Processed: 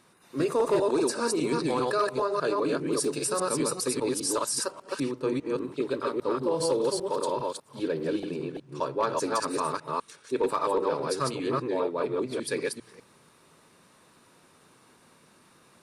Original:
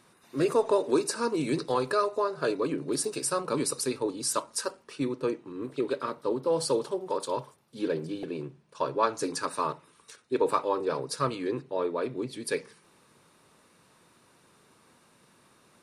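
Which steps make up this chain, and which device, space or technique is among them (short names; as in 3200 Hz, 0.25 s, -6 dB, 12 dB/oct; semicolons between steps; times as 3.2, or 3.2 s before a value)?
reverse delay 0.2 s, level -1 dB; clipper into limiter (hard clip -15 dBFS, distortion -27 dB; limiter -17.5 dBFS, peak gain reduction 2.5 dB); notches 60/120 Hz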